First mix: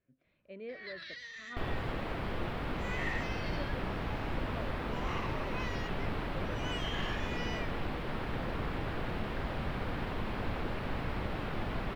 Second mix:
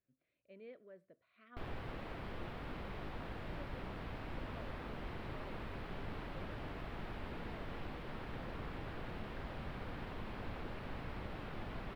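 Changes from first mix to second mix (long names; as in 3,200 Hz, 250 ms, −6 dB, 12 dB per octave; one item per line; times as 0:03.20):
speech −9.5 dB
first sound: muted
second sound −9.0 dB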